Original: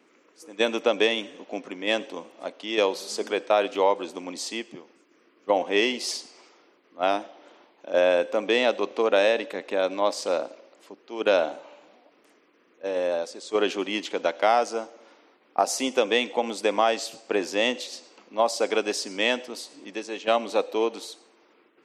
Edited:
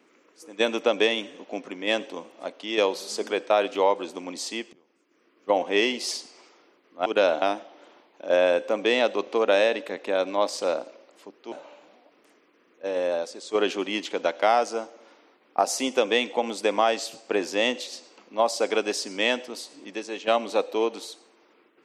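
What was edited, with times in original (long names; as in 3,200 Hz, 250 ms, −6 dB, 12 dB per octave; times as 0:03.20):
0:04.73–0:05.52: fade in, from −22.5 dB
0:11.16–0:11.52: move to 0:07.06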